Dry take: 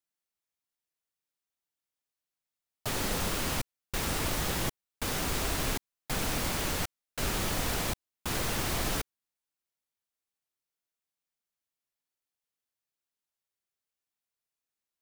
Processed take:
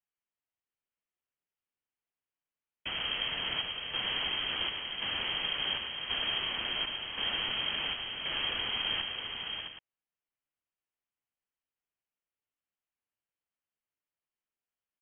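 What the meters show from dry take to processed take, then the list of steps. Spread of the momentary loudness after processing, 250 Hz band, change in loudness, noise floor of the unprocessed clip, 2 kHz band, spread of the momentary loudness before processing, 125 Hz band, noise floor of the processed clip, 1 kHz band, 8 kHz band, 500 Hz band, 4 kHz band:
6 LU, -12.5 dB, 0.0 dB, under -85 dBFS, +1.0 dB, 6 LU, -16.0 dB, under -85 dBFS, -5.0 dB, under -40 dB, -9.0 dB, +8.0 dB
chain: frequency inversion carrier 3.2 kHz; on a send: multi-tap echo 102/591/663/774 ms -8.5/-9.5/-7.5/-13.5 dB; on the sum: trim -3.5 dB

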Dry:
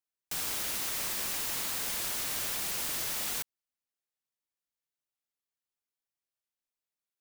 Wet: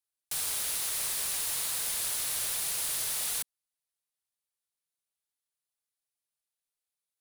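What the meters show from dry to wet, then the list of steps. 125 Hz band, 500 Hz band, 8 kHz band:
-4.0 dB, -3.5 dB, +4.5 dB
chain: fifteen-band graphic EQ 250 Hz -10 dB, 4 kHz +4 dB, 10 kHz +10 dB; trim -2.5 dB

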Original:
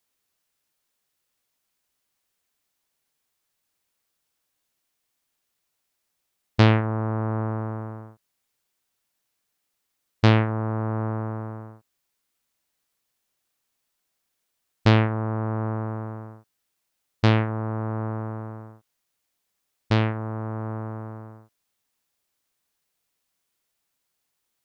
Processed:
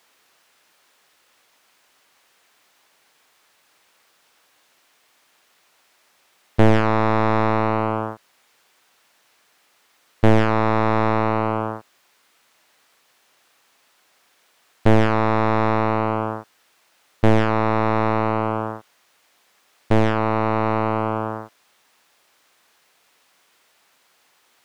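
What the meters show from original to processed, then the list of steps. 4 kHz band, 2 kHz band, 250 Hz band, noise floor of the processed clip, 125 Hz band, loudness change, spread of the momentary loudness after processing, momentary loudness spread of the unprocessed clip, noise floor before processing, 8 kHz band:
-1.0 dB, +6.0 dB, +5.5 dB, -62 dBFS, +0.5 dB, +4.5 dB, 11 LU, 18 LU, -78 dBFS, no reading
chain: overdrive pedal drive 32 dB, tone 2 kHz, clips at -3.5 dBFS

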